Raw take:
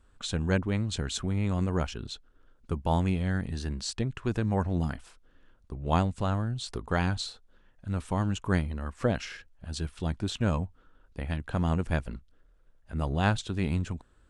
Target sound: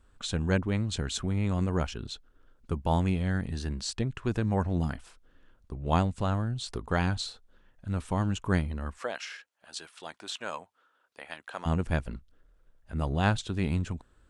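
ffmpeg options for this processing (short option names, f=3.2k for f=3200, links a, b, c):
-filter_complex "[0:a]asplit=3[a][b][c];[a]afade=t=out:st=8.97:d=0.02[d];[b]highpass=700,afade=t=in:st=8.97:d=0.02,afade=t=out:st=11.65:d=0.02[e];[c]afade=t=in:st=11.65:d=0.02[f];[d][e][f]amix=inputs=3:normalize=0"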